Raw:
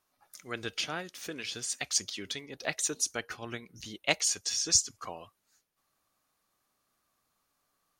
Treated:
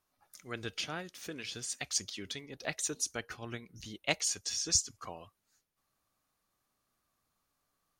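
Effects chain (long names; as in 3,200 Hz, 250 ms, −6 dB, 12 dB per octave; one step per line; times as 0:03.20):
low-shelf EQ 170 Hz +7.5 dB
level −4 dB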